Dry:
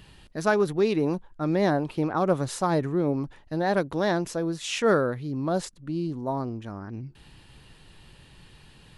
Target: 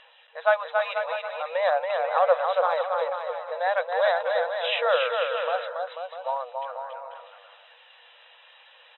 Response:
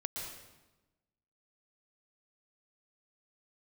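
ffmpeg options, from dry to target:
-af "afftfilt=real='re*between(b*sr/4096,470,4000)':imag='im*between(b*sr/4096,470,4000)':win_size=4096:overlap=0.75,aphaser=in_gain=1:out_gain=1:delay=3.1:decay=0.32:speed=0.42:type=sinusoidal,aecho=1:1:280|490|647.5|765.6|854.2:0.631|0.398|0.251|0.158|0.1,volume=1.26"

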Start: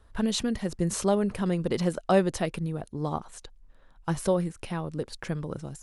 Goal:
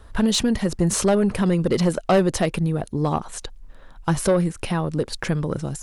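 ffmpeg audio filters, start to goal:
-filter_complex "[0:a]asplit=2[s0][s1];[s1]acompressor=threshold=0.0158:ratio=6,volume=0.708[s2];[s0][s2]amix=inputs=2:normalize=0,asoftclip=type=tanh:threshold=0.119,volume=2.37"

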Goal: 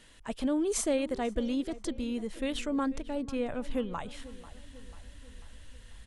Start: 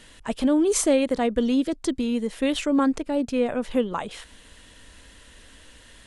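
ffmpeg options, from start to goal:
-filter_complex "[0:a]asubboost=boost=4.5:cutoff=140,asplit=2[s0][s1];[s1]adelay=492,lowpass=f=2700:p=1,volume=0.141,asplit=2[s2][s3];[s3]adelay=492,lowpass=f=2700:p=1,volume=0.54,asplit=2[s4][s5];[s5]adelay=492,lowpass=f=2700:p=1,volume=0.54,asplit=2[s6][s7];[s7]adelay=492,lowpass=f=2700:p=1,volume=0.54,asplit=2[s8][s9];[s9]adelay=492,lowpass=f=2700:p=1,volume=0.54[s10];[s2][s4][s6][s8][s10]amix=inputs=5:normalize=0[s11];[s0][s11]amix=inputs=2:normalize=0,volume=0.398"

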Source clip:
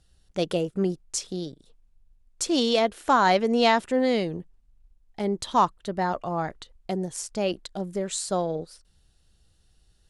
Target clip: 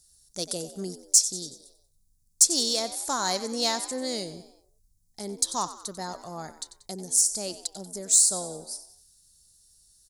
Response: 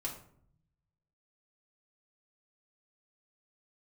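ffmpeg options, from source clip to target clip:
-filter_complex "[0:a]asplit=5[s0][s1][s2][s3][s4];[s1]adelay=93,afreqshift=65,volume=0.2[s5];[s2]adelay=186,afreqshift=130,volume=0.0923[s6];[s3]adelay=279,afreqshift=195,volume=0.0422[s7];[s4]adelay=372,afreqshift=260,volume=0.0195[s8];[s0][s5][s6][s7][s8]amix=inputs=5:normalize=0,aexciter=amount=8.6:drive=8.8:freq=4400,volume=0.316"

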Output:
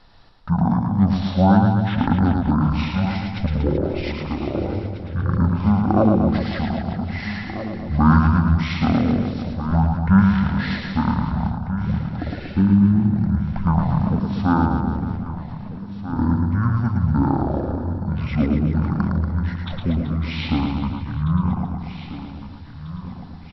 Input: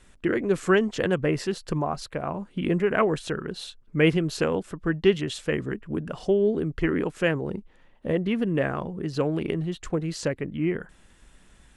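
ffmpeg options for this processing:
-filter_complex "[0:a]asplit=2[s0][s1];[s1]aecho=0:1:796|1592|2388|3184|3980:0.224|0.105|0.0495|0.0232|0.0109[s2];[s0][s2]amix=inputs=2:normalize=0,asetrate=22050,aresample=44100,asplit=2[s3][s4];[s4]aecho=0:1:110|236.5|382|549.3|741.7:0.631|0.398|0.251|0.158|0.1[s5];[s3][s5]amix=inputs=2:normalize=0,volume=1.58"

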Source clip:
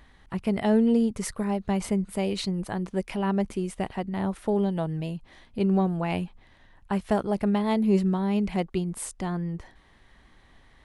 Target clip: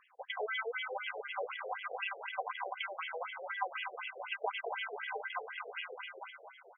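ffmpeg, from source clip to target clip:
-filter_complex "[0:a]atempo=1.6,aecho=1:1:4:0.68,asplit=7[s0][s1][s2][s3][s4][s5][s6];[s1]adelay=220,afreqshift=33,volume=0.531[s7];[s2]adelay=440,afreqshift=66,volume=0.266[s8];[s3]adelay=660,afreqshift=99,volume=0.133[s9];[s4]adelay=880,afreqshift=132,volume=0.0661[s10];[s5]adelay=1100,afreqshift=165,volume=0.0331[s11];[s6]adelay=1320,afreqshift=198,volume=0.0166[s12];[s0][s7][s8][s9][s10][s11][s12]amix=inputs=7:normalize=0,acompressor=threshold=0.0282:ratio=2,aresample=16000,acrusher=samples=9:mix=1:aa=0.000001,aresample=44100,highshelf=f=3800:g=11.5,afftfilt=real='re*between(b*sr/1024,540*pow(2400/540,0.5+0.5*sin(2*PI*4*pts/sr))/1.41,540*pow(2400/540,0.5+0.5*sin(2*PI*4*pts/sr))*1.41)':imag='im*between(b*sr/1024,540*pow(2400/540,0.5+0.5*sin(2*PI*4*pts/sr))/1.41,540*pow(2400/540,0.5+0.5*sin(2*PI*4*pts/sr))*1.41)':win_size=1024:overlap=0.75,volume=1.19"

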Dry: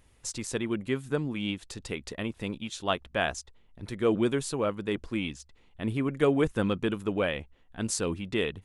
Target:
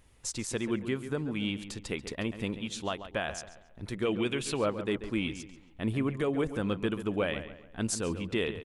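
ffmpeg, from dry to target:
-filter_complex "[0:a]asettb=1/sr,asplit=3[s0][s1][s2];[s0]atrim=end=4.054[s3];[s1]atrim=start=4.05:end=4.59,asetpts=PTS-STARTPTS,afade=t=in:d=0.004:c=qsin,afade=t=out:st=0.536:d=0.004:c=qsin,equalizer=f=2700:t=o:w=0.87:g=13[s4];[s2]atrim=start=4.586[s5];[s3][s4]acrossfade=d=0.004:c1=hsin:c2=qsin[s6];[s6][s5]acrossfade=d=0.004:c1=qsin:c2=hsin,alimiter=limit=0.106:level=0:latency=1:release=223,asplit=2[s7][s8];[s8]adelay=138,lowpass=f=3100:p=1,volume=0.282,asplit=2[s9][s10];[s10]adelay=138,lowpass=f=3100:p=1,volume=0.4,asplit=2[s11][s12];[s12]adelay=138,lowpass=f=3100:p=1,volume=0.4,asplit=2[s13][s14];[s14]adelay=138,lowpass=f=3100:p=1,volume=0.4[s15];[s7][s9][s11][s13][s15]amix=inputs=5:normalize=0"

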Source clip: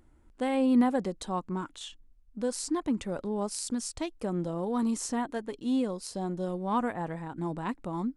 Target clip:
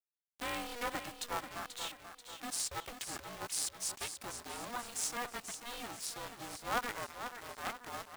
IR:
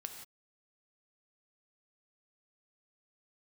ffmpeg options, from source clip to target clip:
-filter_complex "[0:a]highpass=1100,asplit=3[s0][s1][s2];[s0]afade=t=out:st=3.35:d=0.02[s3];[s1]agate=range=0.398:threshold=0.00891:ratio=16:detection=peak,afade=t=in:st=3.35:d=0.02,afade=t=out:st=3.98:d=0.02[s4];[s2]afade=t=in:st=3.98:d=0.02[s5];[s3][s4][s5]amix=inputs=3:normalize=0,asettb=1/sr,asplit=3[s6][s7][s8];[s6]atrim=end=7.074[s9];[s7]atrim=start=7.07:end=7.49,asetpts=PTS-STARTPTS,afade=t=in:d=0.004:c=qsin,afade=t=out:st=0.416:d=0.004:c=qsin,acompressor=threshold=0.00316:ratio=6[s10];[s8]atrim=start=7.486[s11];[s9][s10]acrossfade=d=0.004:c1=hsin:c2=qsin[s12];[s12][s11]acrossfade=d=0.004:c1=qsin:c2=hsin,acrusher=bits=7:mix=0:aa=0.000001,aecho=1:1:486|972|1458|1944|2430:0.355|0.17|0.0817|0.0392|0.0188,aeval=exprs='val(0)*sgn(sin(2*PI*240*n/s))':c=same"

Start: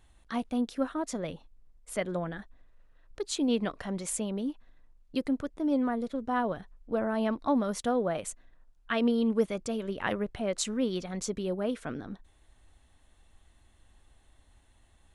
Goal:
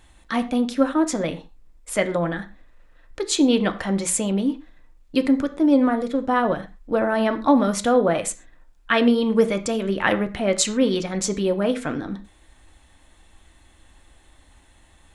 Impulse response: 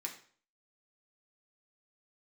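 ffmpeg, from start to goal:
-filter_complex "[0:a]asplit=2[s0][s1];[1:a]atrim=start_sample=2205,atrim=end_sample=6174,highshelf=f=10000:g=-10[s2];[s1][s2]afir=irnorm=-1:irlink=0,volume=1.06[s3];[s0][s3]amix=inputs=2:normalize=0,volume=2.24"

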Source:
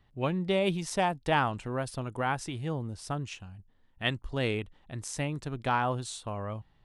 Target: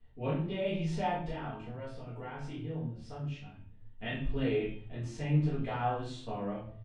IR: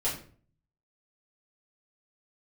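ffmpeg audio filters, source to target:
-filter_complex "[0:a]lowpass=3100,equalizer=f=1100:w=1.2:g=-5.5,bandreject=f=131.4:t=h:w=4,bandreject=f=262.8:t=h:w=4,bandreject=f=394.2:t=h:w=4,bandreject=f=525.6:t=h:w=4,bandreject=f=657:t=h:w=4,bandreject=f=788.4:t=h:w=4,bandreject=f=919.8:t=h:w=4,bandreject=f=1051.2:t=h:w=4,bandreject=f=1182.6:t=h:w=4,bandreject=f=1314:t=h:w=4,bandreject=f=1445.4:t=h:w=4,bandreject=f=1576.8:t=h:w=4,bandreject=f=1708.2:t=h:w=4,bandreject=f=1839.6:t=h:w=4,bandreject=f=1971:t=h:w=4,bandreject=f=2102.4:t=h:w=4,bandreject=f=2233.8:t=h:w=4,bandreject=f=2365.2:t=h:w=4,bandreject=f=2496.6:t=h:w=4,bandreject=f=2628:t=h:w=4,bandreject=f=2759.4:t=h:w=4,bandreject=f=2890.8:t=h:w=4,bandreject=f=3022.2:t=h:w=4,bandreject=f=3153.6:t=h:w=4,bandreject=f=3285:t=h:w=4,bandreject=f=3416.4:t=h:w=4,bandreject=f=3547.8:t=h:w=4,bandreject=f=3679.2:t=h:w=4,bandreject=f=3810.6:t=h:w=4,alimiter=level_in=1.26:limit=0.0631:level=0:latency=1,volume=0.794,asettb=1/sr,asplit=3[s0][s1][s2];[s0]atrim=end=1.284[s3];[s1]atrim=start=1.28:end=3.44,asetpts=PTS-STARTPTS,afade=t=in:d=0.004:c=qsin,afade=t=out:st=2.156:d=0.004:c=qsin,acompressor=threshold=0.00562:ratio=2[s4];[s2]atrim=start=3.436[s5];[s3][s4]acrossfade=d=0.004:c1=hsin:c2=qsin[s6];[s6][s5]acrossfade=d=0.004:c1=qsin:c2=hsin,flanger=delay=17:depth=7.8:speed=0.53,asplit=2[s7][s8];[s8]adelay=26,volume=0.562[s9];[s7][s9]amix=inputs=2:normalize=0[s10];[1:a]atrim=start_sample=2205[s11];[s10][s11]afir=irnorm=-1:irlink=0,volume=0.631"

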